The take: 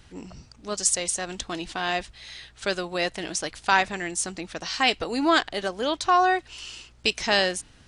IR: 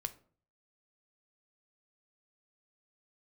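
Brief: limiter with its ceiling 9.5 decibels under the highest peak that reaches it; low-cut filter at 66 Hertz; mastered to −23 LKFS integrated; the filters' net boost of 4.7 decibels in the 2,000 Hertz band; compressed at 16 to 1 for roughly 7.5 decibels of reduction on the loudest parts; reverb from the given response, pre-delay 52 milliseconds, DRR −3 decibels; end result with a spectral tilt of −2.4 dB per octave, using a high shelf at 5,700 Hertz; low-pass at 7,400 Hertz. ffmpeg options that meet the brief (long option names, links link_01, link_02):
-filter_complex "[0:a]highpass=66,lowpass=7400,equalizer=frequency=2000:width_type=o:gain=7,highshelf=frequency=5700:gain=-8,acompressor=threshold=-20dB:ratio=16,alimiter=limit=-16dB:level=0:latency=1,asplit=2[link_01][link_02];[1:a]atrim=start_sample=2205,adelay=52[link_03];[link_02][link_03]afir=irnorm=-1:irlink=0,volume=4dB[link_04];[link_01][link_04]amix=inputs=2:normalize=0,volume=2.5dB"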